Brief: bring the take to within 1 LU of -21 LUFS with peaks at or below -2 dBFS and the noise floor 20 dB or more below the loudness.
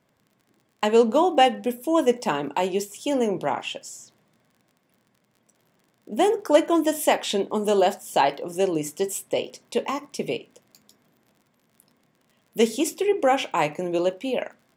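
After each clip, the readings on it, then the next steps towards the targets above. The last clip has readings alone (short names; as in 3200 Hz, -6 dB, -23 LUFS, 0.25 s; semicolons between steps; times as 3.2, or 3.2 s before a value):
ticks 44/s; loudness -23.5 LUFS; peak -5.0 dBFS; loudness target -21.0 LUFS
-> de-click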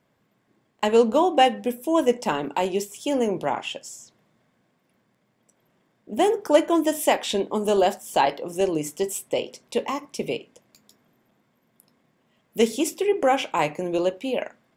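ticks 0.27/s; loudness -23.5 LUFS; peak -5.0 dBFS; loudness target -21.0 LUFS
-> gain +2.5 dB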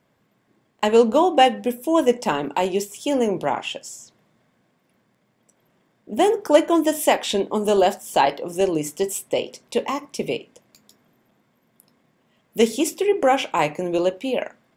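loudness -21.0 LUFS; peak -2.5 dBFS; noise floor -66 dBFS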